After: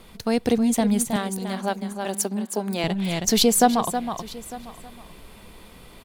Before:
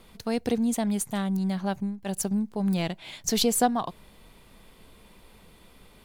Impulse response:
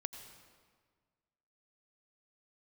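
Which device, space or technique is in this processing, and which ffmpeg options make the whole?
ducked delay: -filter_complex "[0:a]asplit=3[s0][s1][s2];[s1]adelay=319,volume=0.794[s3];[s2]apad=whole_len=280504[s4];[s3][s4]sidechaincompress=threshold=0.0282:ratio=8:attack=34:release=666[s5];[s0][s5]amix=inputs=2:normalize=0,asettb=1/sr,asplit=3[s6][s7][s8];[s6]atrim=end=1.164[s9];[s7]atrim=start=1.16:end=2.84,asetpts=PTS-STARTPTS,afade=t=in:d=0.004:c=qsin,afade=t=out:st=1.676:d=0.004:c=qsin,highpass=f=250:w=0.5412,highpass=f=250:w=1.3066[s10];[s8]atrim=start=2.836[s11];[s9][s10]acrossfade=d=0.004:c1=hsin:c2=qsin[s12];[s12][s11]acrossfade=d=0.004:c1=qsin:c2=hsin,aecho=1:1:902:0.106,volume=1.88"

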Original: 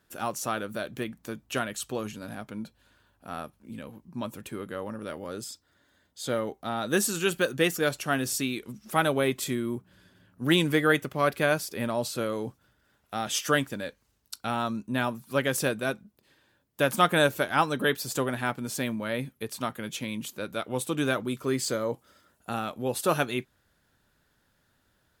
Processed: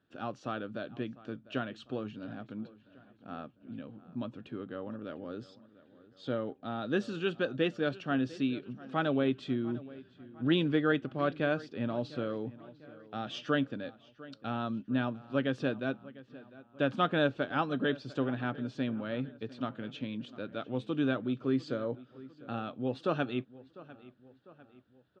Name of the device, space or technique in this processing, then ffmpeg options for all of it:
guitar cabinet: -filter_complex "[0:a]highpass=93,equalizer=f=120:t=q:w=4:g=5,equalizer=f=270:t=q:w=4:g=7,equalizer=f=960:t=q:w=4:g=-7,equalizer=f=2100:t=q:w=4:g=-10,lowpass=f=3600:w=0.5412,lowpass=f=3600:w=1.3066,asplit=2[s0][s1];[s1]adelay=700,lowpass=f=3600:p=1,volume=0.112,asplit=2[s2][s3];[s3]adelay=700,lowpass=f=3600:p=1,volume=0.52,asplit=2[s4][s5];[s5]adelay=700,lowpass=f=3600:p=1,volume=0.52,asplit=2[s6][s7];[s7]adelay=700,lowpass=f=3600:p=1,volume=0.52[s8];[s0][s2][s4][s6][s8]amix=inputs=5:normalize=0,volume=0.531"

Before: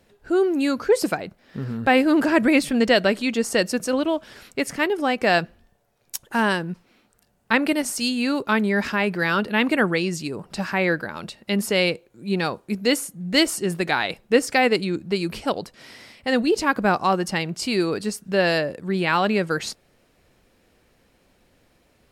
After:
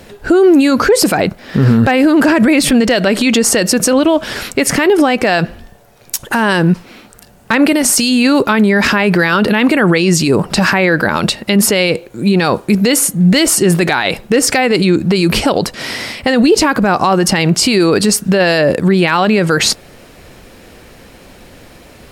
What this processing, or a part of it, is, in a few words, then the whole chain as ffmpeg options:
loud club master: -af "acompressor=threshold=0.0794:ratio=2,asoftclip=type=hard:threshold=0.251,alimiter=level_in=15:limit=0.891:release=50:level=0:latency=1,volume=0.841"

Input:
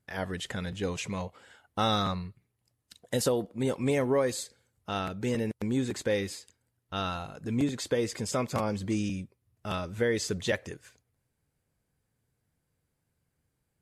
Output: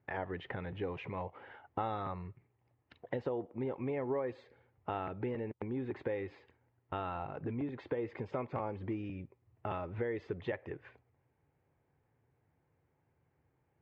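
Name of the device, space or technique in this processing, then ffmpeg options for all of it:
bass amplifier: -af "acompressor=threshold=0.00891:ratio=4,highpass=78,equalizer=f=200:t=q:w=4:g=-9,equalizer=f=370:t=q:w=4:g=4,equalizer=f=850:t=q:w=4:g=6,equalizer=f=1500:t=q:w=4:g=-4,lowpass=f=2300:w=0.5412,lowpass=f=2300:w=1.3066,volume=1.68"

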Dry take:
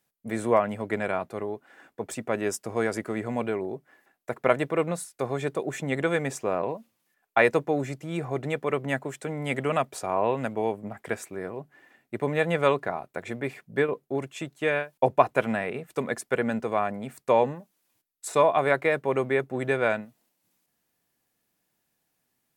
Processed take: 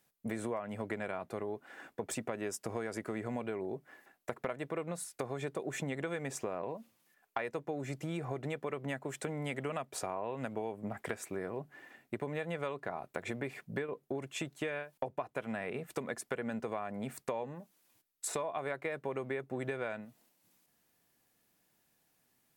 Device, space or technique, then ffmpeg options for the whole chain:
serial compression, peaks first: -af "acompressor=threshold=0.0251:ratio=4,acompressor=threshold=0.0112:ratio=2,volume=1.26"

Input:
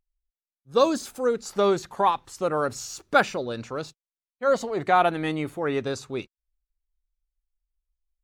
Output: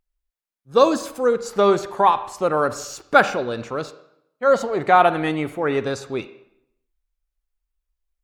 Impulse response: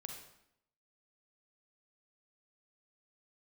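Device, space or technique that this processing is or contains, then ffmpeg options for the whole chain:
filtered reverb send: -filter_complex "[0:a]asplit=2[s0][s1];[s1]highpass=f=430:p=1,lowpass=3100[s2];[1:a]atrim=start_sample=2205[s3];[s2][s3]afir=irnorm=-1:irlink=0,volume=0.891[s4];[s0][s4]amix=inputs=2:normalize=0,volume=1.33"

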